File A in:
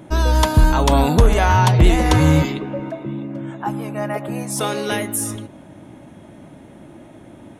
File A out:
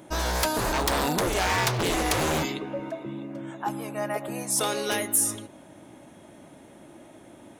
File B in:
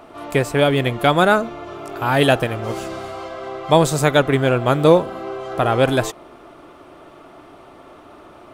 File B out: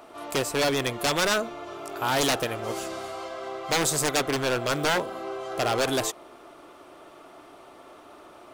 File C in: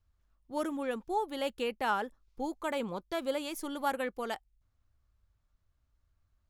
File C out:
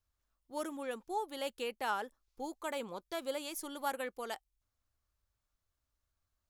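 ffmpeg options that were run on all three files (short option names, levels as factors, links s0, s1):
-af "aeval=exprs='0.224*(abs(mod(val(0)/0.224+3,4)-2)-1)':c=same,bass=f=250:g=-8,treble=f=4000:g=6,volume=0.596"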